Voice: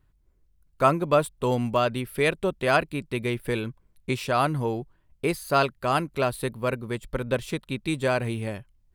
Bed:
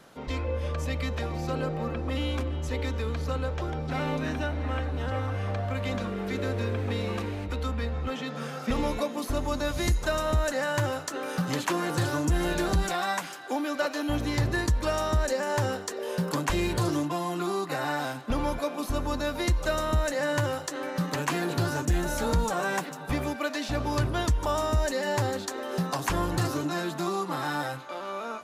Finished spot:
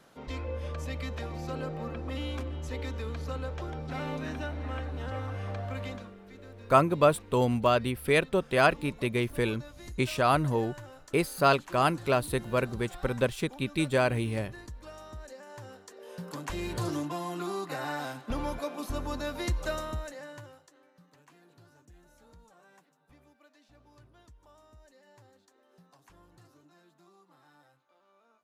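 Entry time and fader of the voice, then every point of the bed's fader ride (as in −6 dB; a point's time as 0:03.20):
5.90 s, −1.0 dB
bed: 0:05.83 −5.5 dB
0:06.20 −19 dB
0:15.61 −19 dB
0:16.88 −5 dB
0:19.71 −5 dB
0:20.94 −31.5 dB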